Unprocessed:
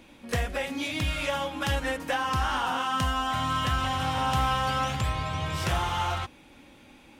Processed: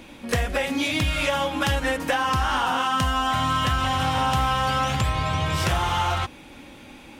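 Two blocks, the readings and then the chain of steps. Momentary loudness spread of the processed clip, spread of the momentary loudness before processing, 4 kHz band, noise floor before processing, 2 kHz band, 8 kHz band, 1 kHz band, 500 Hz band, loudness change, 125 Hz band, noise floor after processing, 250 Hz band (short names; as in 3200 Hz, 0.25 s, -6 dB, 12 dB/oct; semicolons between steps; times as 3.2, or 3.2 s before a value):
3 LU, 5 LU, +5.0 dB, -54 dBFS, +5.0 dB, +5.0 dB, +4.5 dB, +5.5 dB, +5.0 dB, +4.5 dB, -45 dBFS, +5.5 dB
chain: compressor 3:1, threshold -29 dBFS, peak gain reduction 6 dB; gain +8.5 dB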